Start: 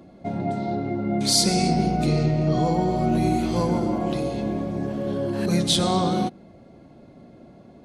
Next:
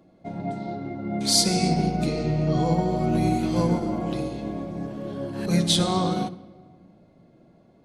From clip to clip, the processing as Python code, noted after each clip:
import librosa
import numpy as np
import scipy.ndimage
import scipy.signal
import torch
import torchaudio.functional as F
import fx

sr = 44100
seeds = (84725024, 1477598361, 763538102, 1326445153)

y = fx.hum_notches(x, sr, base_hz=50, count=7)
y = fx.room_shoebox(y, sr, seeds[0], volume_m3=3200.0, walls='mixed', distance_m=0.6)
y = fx.upward_expand(y, sr, threshold_db=-34.0, expansion=1.5)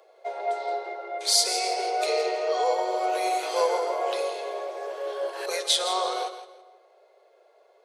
y = scipy.signal.sosfilt(scipy.signal.butter(16, 400.0, 'highpass', fs=sr, output='sos'), x)
y = fx.rider(y, sr, range_db=4, speed_s=0.5)
y = fx.echo_feedback(y, sr, ms=165, feedback_pct=23, wet_db=-11.5)
y = y * librosa.db_to_amplitude(2.5)